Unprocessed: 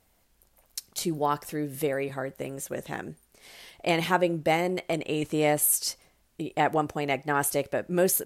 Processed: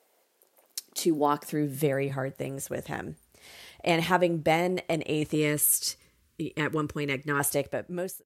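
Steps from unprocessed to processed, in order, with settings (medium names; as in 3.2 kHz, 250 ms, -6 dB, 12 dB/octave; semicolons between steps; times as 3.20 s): fade out at the end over 0.73 s; high-pass sweep 440 Hz -> 72 Hz, 0.37–2.80 s; 5.35–7.40 s: Butterworth band-stop 730 Hz, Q 1.4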